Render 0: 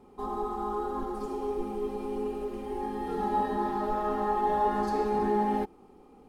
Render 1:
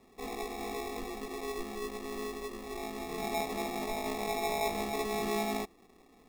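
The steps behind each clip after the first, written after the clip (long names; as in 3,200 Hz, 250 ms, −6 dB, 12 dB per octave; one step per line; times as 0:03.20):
decimation without filtering 29×
level −6 dB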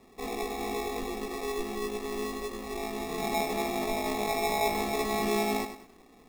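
feedback echo at a low word length 99 ms, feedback 35%, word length 10 bits, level −9.5 dB
level +4 dB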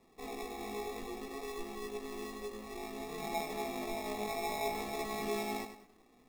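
flanger 0.6 Hz, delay 5.8 ms, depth 4 ms, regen +64%
level −4 dB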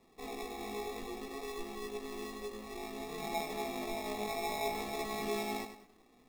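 parametric band 3,700 Hz +2 dB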